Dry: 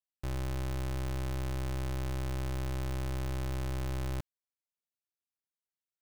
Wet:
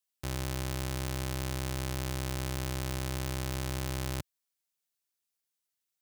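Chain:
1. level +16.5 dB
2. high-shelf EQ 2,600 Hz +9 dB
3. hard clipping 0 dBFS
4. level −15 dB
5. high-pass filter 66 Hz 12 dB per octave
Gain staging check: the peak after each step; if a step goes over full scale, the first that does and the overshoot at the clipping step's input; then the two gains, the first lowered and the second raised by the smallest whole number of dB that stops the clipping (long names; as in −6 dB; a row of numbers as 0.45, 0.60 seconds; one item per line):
−17.0, −5.5, −5.5, −20.5, −18.0 dBFS
no step passes full scale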